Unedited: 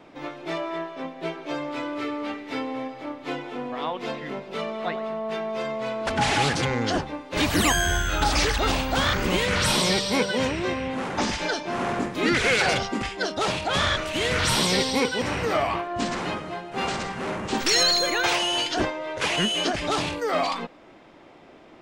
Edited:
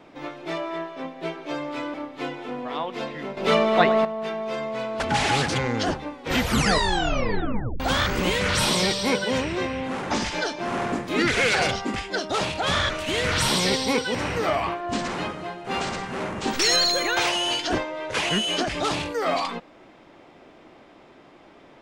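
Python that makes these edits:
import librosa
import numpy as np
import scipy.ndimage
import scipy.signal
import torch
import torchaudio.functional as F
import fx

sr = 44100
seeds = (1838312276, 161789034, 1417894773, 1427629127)

y = fx.edit(x, sr, fx.cut(start_s=1.94, length_s=1.07),
    fx.clip_gain(start_s=4.44, length_s=0.68, db=11.0),
    fx.tape_stop(start_s=7.19, length_s=1.68), tone=tone)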